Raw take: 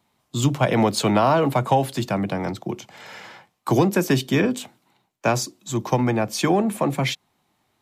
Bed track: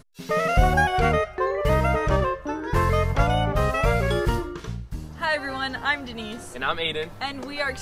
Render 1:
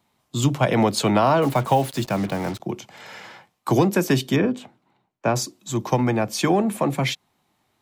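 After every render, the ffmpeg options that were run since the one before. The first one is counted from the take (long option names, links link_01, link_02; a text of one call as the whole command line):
ffmpeg -i in.wav -filter_complex "[0:a]asettb=1/sr,asplit=3[link_01][link_02][link_03];[link_01]atrim=end=1.424[link_04];[link_02]atrim=start=1.42:end=2.6,asetpts=PTS-STARTPTS,afade=type=in:duration=0.004:curve=qsin,afade=type=out:start_time=1.176:duration=0.004:curve=qsin,acrusher=bits=5:mix=0:aa=0.5[link_05];[link_03]atrim=start=2.596[link_06];[link_04][link_05]acrossfade=duration=0.004:curve1=hsin:curve2=qsin[link_07];[link_07][link_06]acrossfade=duration=0.004:curve1=qsin:curve2=hsin,asettb=1/sr,asplit=3[link_08][link_09][link_10];[link_08]atrim=end=4.364[link_11];[link_09]atrim=start=4.36:end=5.36,asetpts=PTS-STARTPTS,afade=type=in:duration=0.004:curve=qsin,afade=type=out:start_time=0.996:duration=0.004:curve=qsin,lowpass=frequency=1500:poles=1[link_12];[link_10]atrim=start=5.356[link_13];[link_11][link_12]acrossfade=duration=0.004:curve1=hsin:curve2=qsin[link_14];[link_14][link_13]acrossfade=duration=0.004:curve1=qsin:curve2=hsin" out.wav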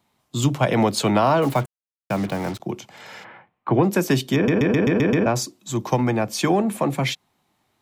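ffmpeg -i in.wav -filter_complex "[0:a]asplit=3[link_01][link_02][link_03];[link_01]afade=type=out:start_time=3.23:duration=0.02[link_04];[link_02]lowpass=frequency=2500:width=0.5412,lowpass=frequency=2500:width=1.3066,afade=type=in:start_time=3.23:duration=0.02,afade=type=out:start_time=3.83:duration=0.02[link_05];[link_03]afade=type=in:start_time=3.83:duration=0.02[link_06];[link_04][link_05][link_06]amix=inputs=3:normalize=0,asplit=10[link_07][link_08][link_09][link_10][link_11][link_12][link_13][link_14][link_15][link_16];[link_07]atrim=end=1.66,asetpts=PTS-STARTPTS,afade=type=out:start_time=1.656:duration=0.004:curve=hsin[link_17];[link_08]atrim=start=1.66:end=2.1,asetpts=PTS-STARTPTS,volume=0[link_18];[link_09]atrim=start=2.1:end=4.482,asetpts=PTS-STARTPTS,afade=type=in:duration=0.004:curve=hsin[link_19];[link_10]atrim=start=4.348:end=4.482[link_20];[link_11]atrim=start=4.348:end=4.482[link_21];[link_12]atrim=start=4.348:end=4.482[link_22];[link_13]atrim=start=4.348:end=4.482[link_23];[link_14]atrim=start=4.348:end=4.482[link_24];[link_15]atrim=start=4.348:end=4.482[link_25];[link_16]atrim=start=5.258[link_26];[link_17][link_18][link_19]concat=n=3:v=0:a=1[link_27];[link_27][link_20]acrossfade=duration=0.004:curve1=hsin:curve2=hsin[link_28];[link_28][link_21]acrossfade=duration=0.004:curve1=hsin:curve2=hsin[link_29];[link_29][link_22]acrossfade=duration=0.004:curve1=hsin:curve2=hsin[link_30];[link_30][link_23]acrossfade=duration=0.004:curve1=hsin:curve2=hsin[link_31];[link_31][link_24]acrossfade=duration=0.004:curve1=hsin:curve2=hsin[link_32];[link_32][link_25]acrossfade=duration=0.004:curve1=hsin:curve2=hsin[link_33];[link_33][link_26]acrossfade=duration=0.004:curve1=hsin:curve2=hsin" out.wav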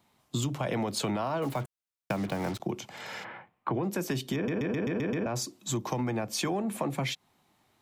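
ffmpeg -i in.wav -af "alimiter=limit=-12.5dB:level=0:latency=1:release=14,acompressor=threshold=-28dB:ratio=6" out.wav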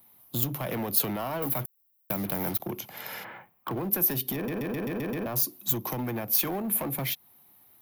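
ffmpeg -i in.wav -af "asoftclip=type=hard:threshold=-27.5dB,aexciter=amount=13.2:drive=8.1:freq=11000" out.wav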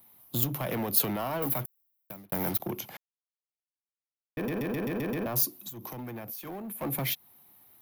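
ffmpeg -i in.wav -filter_complex "[0:a]asplit=3[link_01][link_02][link_03];[link_01]afade=type=out:start_time=5.61:duration=0.02[link_04];[link_02]acompressor=threshold=-36dB:ratio=16:attack=3.2:release=140:knee=1:detection=peak,afade=type=in:start_time=5.61:duration=0.02,afade=type=out:start_time=6.81:duration=0.02[link_05];[link_03]afade=type=in:start_time=6.81:duration=0.02[link_06];[link_04][link_05][link_06]amix=inputs=3:normalize=0,asplit=4[link_07][link_08][link_09][link_10];[link_07]atrim=end=2.32,asetpts=PTS-STARTPTS,afade=type=out:start_time=1.47:duration=0.85[link_11];[link_08]atrim=start=2.32:end=2.97,asetpts=PTS-STARTPTS,afade=type=in:duration=0.004:curve=hsin,afade=type=out:start_time=0.646:duration=0.004:curve=hsin[link_12];[link_09]atrim=start=2.97:end=4.37,asetpts=PTS-STARTPTS,volume=0[link_13];[link_10]atrim=start=4.37,asetpts=PTS-STARTPTS,afade=type=in:duration=0.004:curve=hsin[link_14];[link_11][link_12][link_13][link_14]concat=n=4:v=0:a=1" out.wav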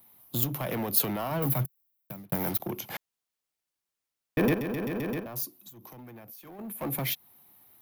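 ffmpeg -i in.wav -filter_complex "[0:a]asettb=1/sr,asplit=3[link_01][link_02][link_03];[link_01]atrim=end=1.314[link_04];[link_02]atrim=start=1.31:end=2.36,asetpts=PTS-STARTPTS,afade=type=in:duration=0.004:curve=qsin,afade=type=out:start_time=1.046:duration=0.004:curve=qsin,equalizer=frequency=140:width=1.5:gain=10[link_05];[link_03]atrim=start=2.356[link_06];[link_04][link_05]acrossfade=duration=0.004:curve1=hsin:curve2=qsin[link_07];[link_07][link_06]acrossfade=duration=0.004:curve1=qsin:curve2=hsin,asplit=5[link_08][link_09][link_10][link_11][link_12];[link_08]atrim=end=2.902[link_13];[link_09]atrim=start=2.898:end=4.542,asetpts=PTS-STARTPTS,volume=8.5dB[link_14];[link_10]atrim=start=4.538:end=5.202[link_15];[link_11]atrim=start=5.198:end=6.592,asetpts=PTS-STARTPTS,volume=-7.5dB[link_16];[link_12]atrim=start=6.588[link_17];[link_13][link_14]acrossfade=duration=0.004:curve1=hsin:curve2=hsin[link_18];[link_18][link_15]acrossfade=duration=0.004:curve1=hsin:curve2=hsin[link_19];[link_19][link_16]acrossfade=duration=0.004:curve1=hsin:curve2=hsin[link_20];[link_20][link_17]acrossfade=duration=0.004:curve1=hsin:curve2=hsin" out.wav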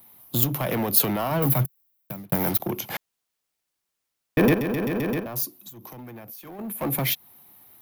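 ffmpeg -i in.wav -af "volume=6dB,alimiter=limit=-3dB:level=0:latency=1" out.wav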